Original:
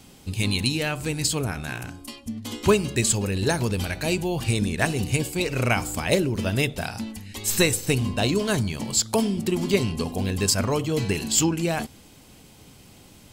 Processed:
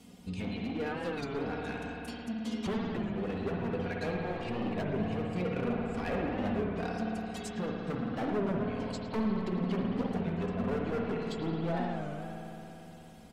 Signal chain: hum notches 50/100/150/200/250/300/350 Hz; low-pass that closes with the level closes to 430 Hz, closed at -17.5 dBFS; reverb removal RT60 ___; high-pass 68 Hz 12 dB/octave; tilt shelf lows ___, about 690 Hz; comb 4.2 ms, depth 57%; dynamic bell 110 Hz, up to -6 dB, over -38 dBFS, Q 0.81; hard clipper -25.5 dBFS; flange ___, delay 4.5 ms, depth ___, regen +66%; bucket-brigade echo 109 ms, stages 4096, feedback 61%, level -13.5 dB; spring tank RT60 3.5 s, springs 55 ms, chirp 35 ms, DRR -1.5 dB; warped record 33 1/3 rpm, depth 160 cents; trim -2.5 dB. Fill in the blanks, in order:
0.75 s, +4 dB, 1.2 Hz, 1.5 ms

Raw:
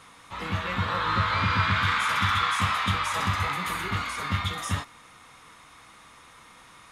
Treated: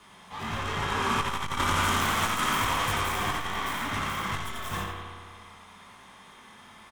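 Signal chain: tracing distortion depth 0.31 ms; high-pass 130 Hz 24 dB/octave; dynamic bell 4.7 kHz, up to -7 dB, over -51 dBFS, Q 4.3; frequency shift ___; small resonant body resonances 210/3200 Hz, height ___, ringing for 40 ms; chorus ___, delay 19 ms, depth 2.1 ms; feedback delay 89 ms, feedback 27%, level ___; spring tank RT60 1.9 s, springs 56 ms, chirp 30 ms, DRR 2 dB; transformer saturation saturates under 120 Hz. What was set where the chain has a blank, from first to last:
-95 Hz, 10 dB, 2.2 Hz, -5.5 dB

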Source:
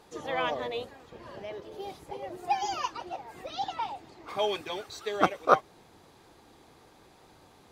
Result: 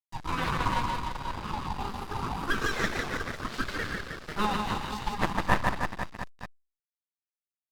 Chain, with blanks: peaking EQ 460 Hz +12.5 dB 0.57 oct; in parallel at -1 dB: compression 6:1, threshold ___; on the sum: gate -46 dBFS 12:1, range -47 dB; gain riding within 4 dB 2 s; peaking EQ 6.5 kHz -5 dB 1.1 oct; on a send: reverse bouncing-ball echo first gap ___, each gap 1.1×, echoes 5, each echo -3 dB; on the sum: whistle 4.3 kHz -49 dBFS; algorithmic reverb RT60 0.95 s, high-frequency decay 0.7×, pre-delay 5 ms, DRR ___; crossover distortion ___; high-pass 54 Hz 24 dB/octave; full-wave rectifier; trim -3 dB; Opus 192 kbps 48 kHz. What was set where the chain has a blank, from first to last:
-32 dBFS, 150 ms, 11.5 dB, -30.5 dBFS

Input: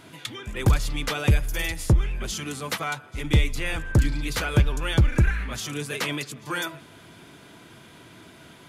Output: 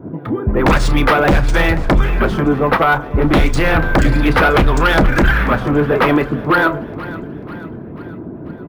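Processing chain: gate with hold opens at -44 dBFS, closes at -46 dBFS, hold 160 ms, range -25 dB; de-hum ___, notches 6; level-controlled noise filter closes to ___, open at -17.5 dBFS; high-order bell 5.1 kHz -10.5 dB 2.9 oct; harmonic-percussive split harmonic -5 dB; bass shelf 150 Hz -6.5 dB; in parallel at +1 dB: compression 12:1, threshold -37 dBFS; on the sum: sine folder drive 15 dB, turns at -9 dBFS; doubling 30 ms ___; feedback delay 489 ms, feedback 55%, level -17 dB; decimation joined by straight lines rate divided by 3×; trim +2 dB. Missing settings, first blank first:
130.3 Hz, 310 Hz, -14 dB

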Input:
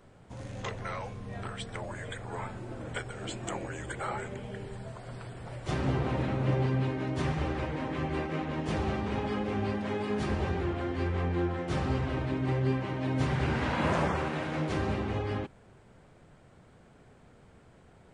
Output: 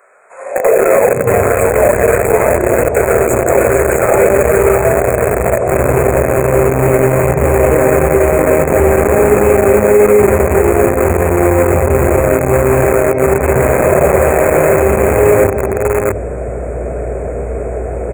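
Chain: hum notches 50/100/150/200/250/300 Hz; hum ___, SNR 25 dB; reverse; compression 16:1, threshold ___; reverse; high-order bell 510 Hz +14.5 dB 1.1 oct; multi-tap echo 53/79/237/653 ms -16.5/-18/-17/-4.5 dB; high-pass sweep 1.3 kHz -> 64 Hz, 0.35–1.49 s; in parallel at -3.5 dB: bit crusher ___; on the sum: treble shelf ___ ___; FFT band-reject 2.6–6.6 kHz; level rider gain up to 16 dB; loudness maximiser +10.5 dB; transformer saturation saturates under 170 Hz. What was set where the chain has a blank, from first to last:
60 Hz, -38 dBFS, 5-bit, 4.2 kHz, +3 dB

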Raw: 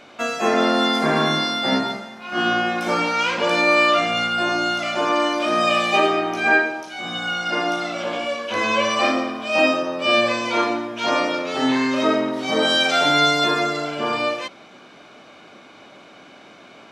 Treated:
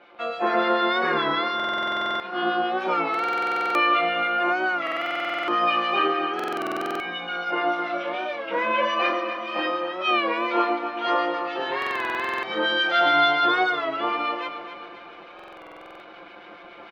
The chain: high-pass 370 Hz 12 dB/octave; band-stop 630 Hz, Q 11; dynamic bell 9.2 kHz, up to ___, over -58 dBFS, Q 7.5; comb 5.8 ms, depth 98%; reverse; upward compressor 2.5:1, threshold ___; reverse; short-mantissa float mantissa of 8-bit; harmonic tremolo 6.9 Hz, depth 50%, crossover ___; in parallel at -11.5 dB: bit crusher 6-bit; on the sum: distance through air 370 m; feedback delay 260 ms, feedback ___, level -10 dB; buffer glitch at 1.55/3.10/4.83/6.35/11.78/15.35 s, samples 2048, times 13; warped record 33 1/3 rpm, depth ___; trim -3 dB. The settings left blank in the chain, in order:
+5 dB, -30 dBFS, 1.3 kHz, 50%, 100 cents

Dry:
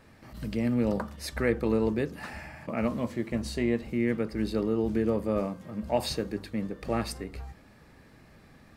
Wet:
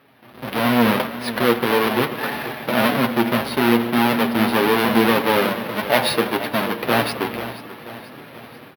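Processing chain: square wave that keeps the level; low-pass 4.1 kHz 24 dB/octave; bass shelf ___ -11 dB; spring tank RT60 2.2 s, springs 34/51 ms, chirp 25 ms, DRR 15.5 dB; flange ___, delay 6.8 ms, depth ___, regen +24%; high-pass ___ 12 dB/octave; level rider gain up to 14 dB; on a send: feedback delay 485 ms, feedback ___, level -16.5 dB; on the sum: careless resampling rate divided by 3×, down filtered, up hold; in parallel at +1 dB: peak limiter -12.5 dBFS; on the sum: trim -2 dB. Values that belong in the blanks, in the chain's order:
240 Hz, 1.7 Hz, 1.9 ms, 140 Hz, 52%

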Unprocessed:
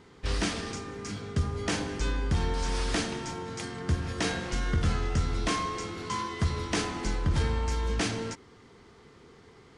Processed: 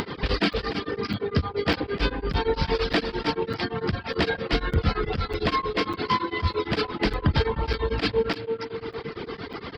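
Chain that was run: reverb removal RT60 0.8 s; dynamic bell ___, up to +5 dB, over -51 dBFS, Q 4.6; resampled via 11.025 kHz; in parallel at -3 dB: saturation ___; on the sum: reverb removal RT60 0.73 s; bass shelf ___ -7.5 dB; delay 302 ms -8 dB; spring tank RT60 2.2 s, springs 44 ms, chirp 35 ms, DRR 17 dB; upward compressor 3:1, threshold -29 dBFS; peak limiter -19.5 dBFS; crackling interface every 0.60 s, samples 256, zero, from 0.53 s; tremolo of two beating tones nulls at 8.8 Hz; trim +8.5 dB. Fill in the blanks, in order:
460 Hz, -25 dBFS, 100 Hz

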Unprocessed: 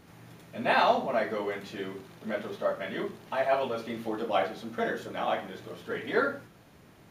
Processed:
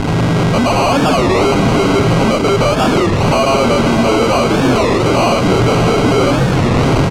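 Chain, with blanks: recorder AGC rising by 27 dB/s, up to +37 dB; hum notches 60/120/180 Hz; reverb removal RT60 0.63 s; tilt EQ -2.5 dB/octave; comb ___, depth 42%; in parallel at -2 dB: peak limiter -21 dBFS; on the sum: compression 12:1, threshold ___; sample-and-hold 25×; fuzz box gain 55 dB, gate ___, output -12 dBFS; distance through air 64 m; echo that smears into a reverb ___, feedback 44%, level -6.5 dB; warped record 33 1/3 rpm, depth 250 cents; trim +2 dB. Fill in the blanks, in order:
7.3 ms, -27 dBFS, -47 dBFS, 581 ms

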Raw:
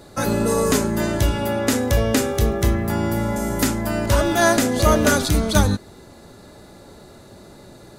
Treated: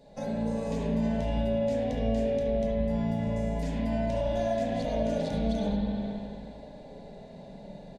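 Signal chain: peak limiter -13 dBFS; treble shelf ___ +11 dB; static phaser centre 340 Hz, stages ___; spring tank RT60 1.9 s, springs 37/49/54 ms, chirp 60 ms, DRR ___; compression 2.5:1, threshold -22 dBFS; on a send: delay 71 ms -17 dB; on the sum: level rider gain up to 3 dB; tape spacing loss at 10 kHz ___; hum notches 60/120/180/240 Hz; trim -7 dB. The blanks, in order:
4.5 kHz, 6, -6 dB, 31 dB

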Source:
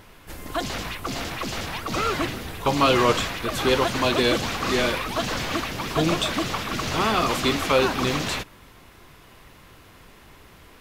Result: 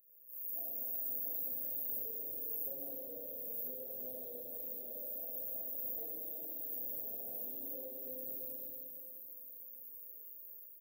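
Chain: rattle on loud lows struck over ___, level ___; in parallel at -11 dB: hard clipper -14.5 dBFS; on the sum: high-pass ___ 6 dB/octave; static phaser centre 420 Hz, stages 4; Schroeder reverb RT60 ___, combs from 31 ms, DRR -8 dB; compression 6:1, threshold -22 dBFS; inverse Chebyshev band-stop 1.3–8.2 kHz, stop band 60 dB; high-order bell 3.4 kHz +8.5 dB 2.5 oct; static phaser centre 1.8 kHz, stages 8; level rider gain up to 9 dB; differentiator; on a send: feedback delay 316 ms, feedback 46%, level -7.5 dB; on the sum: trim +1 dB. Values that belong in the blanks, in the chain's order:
-35 dBFS, -23 dBFS, 210 Hz, 1.6 s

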